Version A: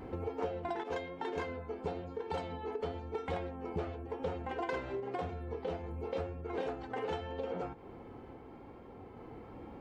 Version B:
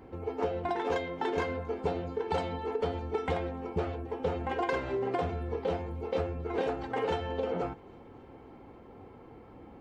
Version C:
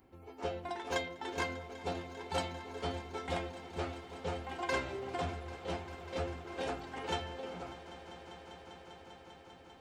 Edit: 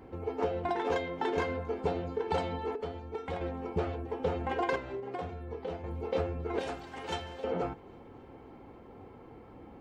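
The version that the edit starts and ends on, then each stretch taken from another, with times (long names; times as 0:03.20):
B
0:02.75–0:03.41: punch in from A
0:04.76–0:05.84: punch in from A
0:06.59–0:07.44: punch in from C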